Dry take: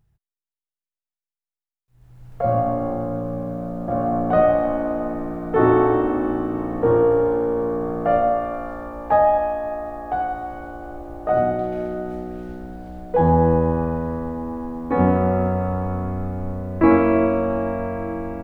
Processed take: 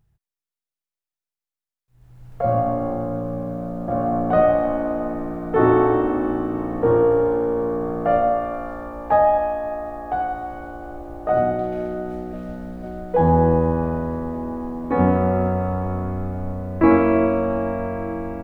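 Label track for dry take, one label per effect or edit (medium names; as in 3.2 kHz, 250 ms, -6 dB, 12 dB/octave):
11.830000	12.350000	echo throw 500 ms, feedback 85%, level -7.5 dB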